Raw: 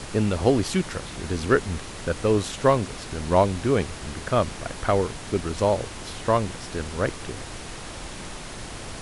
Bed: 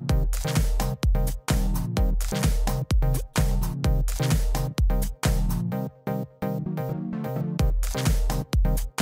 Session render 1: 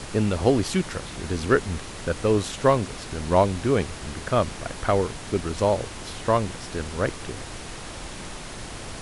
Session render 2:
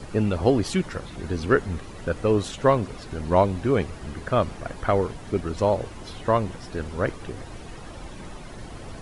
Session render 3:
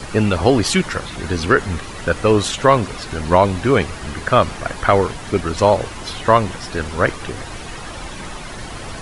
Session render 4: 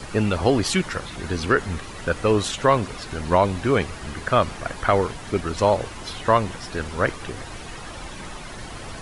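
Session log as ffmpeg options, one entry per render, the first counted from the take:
-af anull
-af "afftdn=nr=11:nf=-38"
-filter_complex "[0:a]acrossover=split=870[a][b];[b]acontrast=85[c];[a][c]amix=inputs=2:normalize=0,alimiter=level_in=6dB:limit=-1dB:release=50:level=0:latency=1"
-af "volume=-5dB"

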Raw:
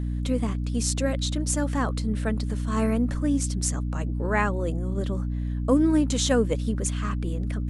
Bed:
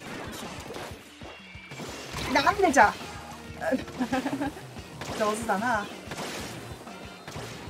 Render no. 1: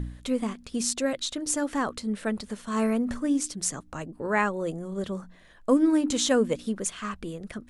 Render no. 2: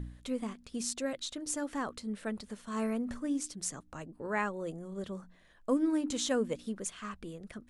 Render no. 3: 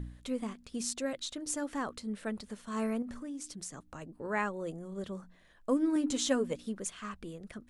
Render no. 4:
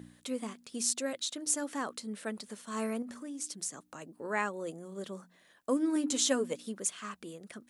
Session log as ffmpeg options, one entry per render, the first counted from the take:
-af "bandreject=f=60:t=h:w=4,bandreject=f=120:t=h:w=4,bandreject=f=180:t=h:w=4,bandreject=f=240:t=h:w=4,bandreject=f=300:t=h:w=4"
-af "volume=-8dB"
-filter_complex "[0:a]asettb=1/sr,asplit=3[a][b][c];[a]atrim=end=3.024[d];[b]atrim=start=3.02:end=4.02,asetpts=PTS-STARTPTS,afade=t=in:d=0.004:c=qsin,afade=t=out:st=0.996:d=0.004:c=qsin,acompressor=threshold=-39dB:ratio=4:attack=3.2:release=140:knee=1:detection=peak[e];[c]atrim=start=4.016[f];[d][e]acrossfade=d=0.004:c1=hsin:c2=qsin[g];[g][f]acrossfade=d=0.004:c1=qsin:c2=hsin,asettb=1/sr,asplit=3[h][i][j];[h]atrim=end=5.954[k];[i]atrim=start=5.95:end=6.52,asetpts=PTS-STARTPTS,afade=t=in:d=0.004:c=qsin,afade=t=out:st=0.566:d=0.004:c=qsin,aecho=1:1:7.3:0.56,atrim=end_sample=25137[l];[j]atrim=start=6.516[m];[k][l]acrossfade=d=0.004:c1=hsin:c2=qsin[n];[n][m]acrossfade=d=0.004:c1=qsin:c2=hsin"
-af "highpass=210,highshelf=f=4.9k:g=8.5"

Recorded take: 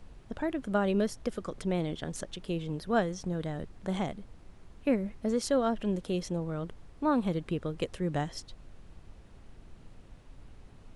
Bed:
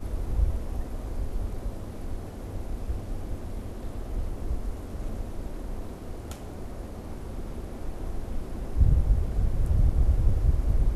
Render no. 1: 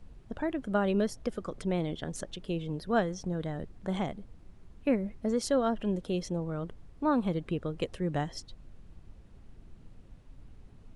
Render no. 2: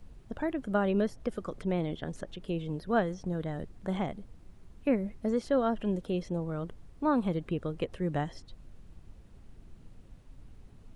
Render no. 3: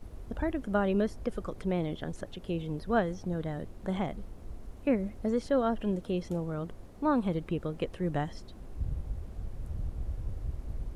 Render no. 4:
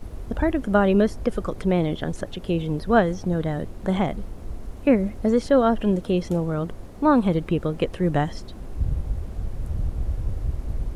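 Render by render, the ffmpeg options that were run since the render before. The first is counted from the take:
-af "afftdn=nr=6:nf=-53"
-filter_complex "[0:a]acrossover=split=3100[a][b];[b]acompressor=threshold=-58dB:ratio=4:attack=1:release=60[c];[a][c]amix=inputs=2:normalize=0,highshelf=f=7.9k:g=6.5"
-filter_complex "[1:a]volume=-13.5dB[a];[0:a][a]amix=inputs=2:normalize=0"
-af "volume=9.5dB"

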